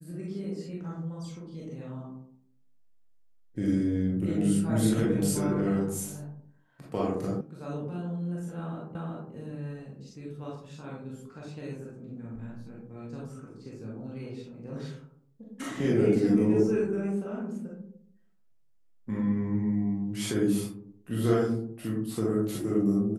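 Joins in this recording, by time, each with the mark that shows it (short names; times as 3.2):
7.41 sound cut off
8.95 repeat of the last 0.37 s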